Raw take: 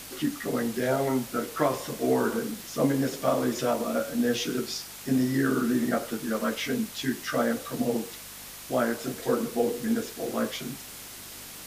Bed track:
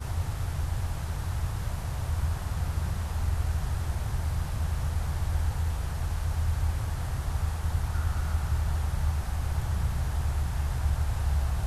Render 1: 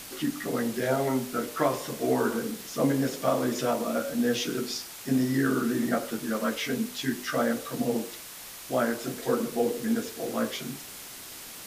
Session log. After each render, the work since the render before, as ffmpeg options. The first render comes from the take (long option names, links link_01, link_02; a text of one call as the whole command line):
ffmpeg -i in.wav -af "bandreject=frequency=50:width_type=h:width=4,bandreject=frequency=100:width_type=h:width=4,bandreject=frequency=150:width_type=h:width=4,bandreject=frequency=200:width_type=h:width=4,bandreject=frequency=250:width_type=h:width=4,bandreject=frequency=300:width_type=h:width=4,bandreject=frequency=350:width_type=h:width=4,bandreject=frequency=400:width_type=h:width=4,bandreject=frequency=450:width_type=h:width=4,bandreject=frequency=500:width_type=h:width=4,bandreject=frequency=550:width_type=h:width=4,bandreject=frequency=600:width_type=h:width=4" out.wav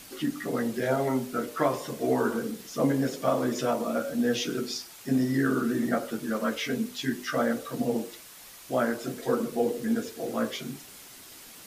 ffmpeg -i in.wav -af "afftdn=noise_reduction=6:noise_floor=-43" out.wav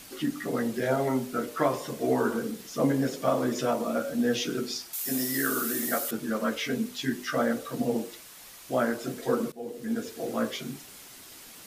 ffmpeg -i in.wav -filter_complex "[0:a]asettb=1/sr,asplit=3[link_01][link_02][link_03];[link_01]atrim=end=4.934[link_04];[link_02]atrim=start=4.93:end=6.11,asetpts=PTS-STARTPTS,afade=type=in:duration=0.004:curve=qsin,afade=type=out:start_time=1.176:duration=0.004:curve=qsin,aemphasis=mode=production:type=riaa[link_05];[link_03]atrim=start=6.106[link_06];[link_04][link_05]acrossfade=duration=0.004:curve1=hsin:curve2=qsin[link_07];[link_07][link_06]acrossfade=duration=0.004:curve1=qsin:curve2=hsin,asplit=2[link_08][link_09];[link_08]atrim=end=9.52,asetpts=PTS-STARTPTS,afade=type=out:start_time=9.516:duration=0.004:curve=hsin:silence=0.0944061[link_10];[link_09]atrim=start=9.52,asetpts=PTS-STARTPTS,afade=type=in:duration=0.62:silence=0.0944061[link_11];[link_10][link_11]concat=n=2:v=0:a=1" out.wav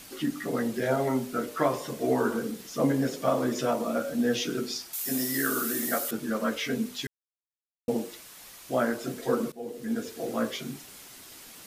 ffmpeg -i in.wav -filter_complex "[0:a]asplit=3[link_01][link_02][link_03];[link_01]atrim=end=7.07,asetpts=PTS-STARTPTS,afade=type=out:start_time=7.066:duration=0.004:curve=hsin[link_04];[link_02]atrim=start=7.07:end=7.88,asetpts=PTS-STARTPTS,volume=0[link_05];[link_03]atrim=start=7.88,asetpts=PTS-STARTPTS,afade=type=in:duration=0.004:curve=hsin[link_06];[link_04][link_05][link_06]concat=n=3:v=0:a=1" out.wav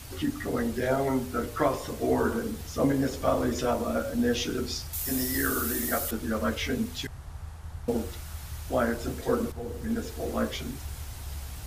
ffmpeg -i in.wav -i bed.wav -filter_complex "[1:a]volume=-11.5dB[link_01];[0:a][link_01]amix=inputs=2:normalize=0" out.wav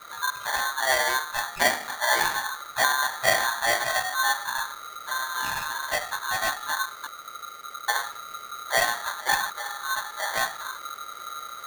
ffmpeg -i in.wav -af "lowpass=frequency=750:width_type=q:width=1.7,aeval=exprs='val(0)*sgn(sin(2*PI*1300*n/s))':channel_layout=same" out.wav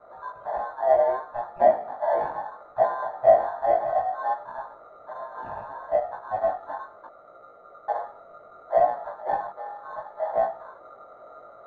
ffmpeg -i in.wav -af "flanger=delay=16.5:depth=4.4:speed=0.67,lowpass=frequency=660:width_type=q:width=4.9" out.wav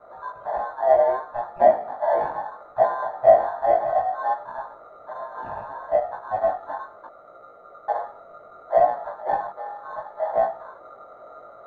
ffmpeg -i in.wav -af "volume=2.5dB" out.wav